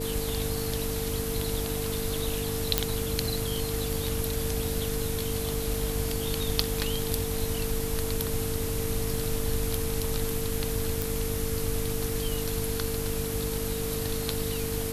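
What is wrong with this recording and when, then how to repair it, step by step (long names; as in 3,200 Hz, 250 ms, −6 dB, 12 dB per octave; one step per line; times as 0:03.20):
mains hum 50 Hz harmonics 6 −35 dBFS
whistle 450 Hz −33 dBFS
0:02.78: click −3 dBFS
0:11.02: click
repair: click removal
hum removal 50 Hz, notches 6
notch filter 450 Hz, Q 30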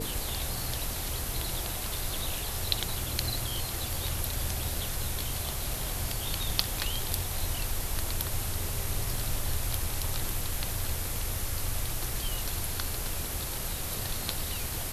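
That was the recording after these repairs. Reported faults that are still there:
none of them is left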